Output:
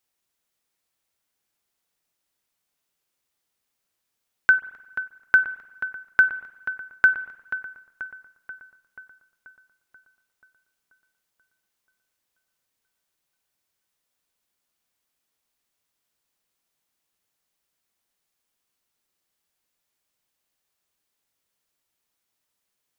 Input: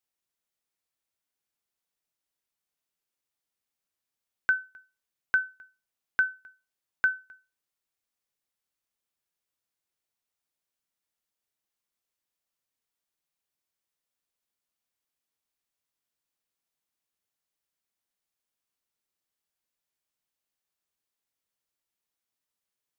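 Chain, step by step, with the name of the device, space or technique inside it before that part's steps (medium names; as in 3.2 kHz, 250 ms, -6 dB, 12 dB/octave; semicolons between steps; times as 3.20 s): dub delay into a spring reverb (filtered feedback delay 484 ms, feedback 62%, low-pass 3.2 kHz, level -12 dB; spring tank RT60 1.1 s, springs 44/49 ms, chirp 50 ms, DRR 16.5 dB); trim +8 dB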